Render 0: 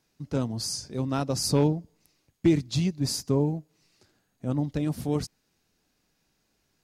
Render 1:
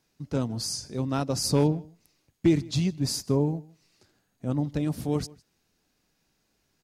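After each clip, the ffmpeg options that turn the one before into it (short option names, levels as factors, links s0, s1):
-filter_complex "[0:a]asplit=2[s0][s1];[s1]adelay=157.4,volume=0.0708,highshelf=f=4000:g=-3.54[s2];[s0][s2]amix=inputs=2:normalize=0"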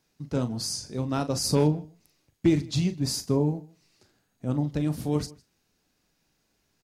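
-filter_complex "[0:a]asplit=2[s0][s1];[s1]adelay=40,volume=0.282[s2];[s0][s2]amix=inputs=2:normalize=0"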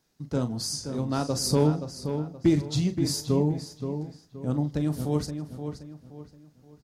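-filter_complex "[0:a]equalizer=f=2500:t=o:w=0.48:g=-5,asplit=2[s0][s1];[s1]adelay=524,lowpass=f=3500:p=1,volume=0.398,asplit=2[s2][s3];[s3]adelay=524,lowpass=f=3500:p=1,volume=0.35,asplit=2[s4][s5];[s5]adelay=524,lowpass=f=3500:p=1,volume=0.35,asplit=2[s6][s7];[s7]adelay=524,lowpass=f=3500:p=1,volume=0.35[s8];[s2][s4][s6][s8]amix=inputs=4:normalize=0[s9];[s0][s9]amix=inputs=2:normalize=0"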